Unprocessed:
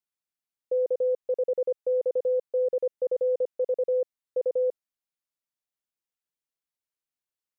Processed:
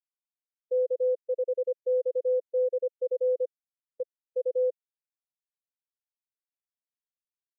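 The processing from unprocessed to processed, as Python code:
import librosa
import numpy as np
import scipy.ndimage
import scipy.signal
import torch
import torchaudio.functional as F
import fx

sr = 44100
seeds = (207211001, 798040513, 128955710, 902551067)

y = scipy.signal.sosfilt(scipy.signal.cheby1(2, 1.0, 650.0, 'lowpass', fs=sr, output='sos'), x)
y = fx.buffer_glitch(y, sr, at_s=(3.49,), block=2048, repeats=10)
y = fx.spectral_expand(y, sr, expansion=1.5)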